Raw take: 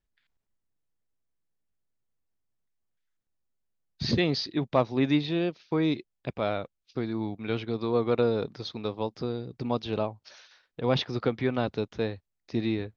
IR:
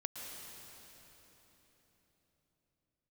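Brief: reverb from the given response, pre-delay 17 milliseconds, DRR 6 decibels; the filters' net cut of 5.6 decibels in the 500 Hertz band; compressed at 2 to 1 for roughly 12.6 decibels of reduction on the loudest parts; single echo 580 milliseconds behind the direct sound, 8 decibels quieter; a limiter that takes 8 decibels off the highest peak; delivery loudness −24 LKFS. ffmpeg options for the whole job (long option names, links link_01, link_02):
-filter_complex "[0:a]equalizer=frequency=500:width_type=o:gain=-7,acompressor=threshold=-45dB:ratio=2,alimiter=level_in=8.5dB:limit=-24dB:level=0:latency=1,volume=-8.5dB,aecho=1:1:580:0.398,asplit=2[link_01][link_02];[1:a]atrim=start_sample=2205,adelay=17[link_03];[link_02][link_03]afir=irnorm=-1:irlink=0,volume=-5.5dB[link_04];[link_01][link_04]amix=inputs=2:normalize=0,volume=19dB"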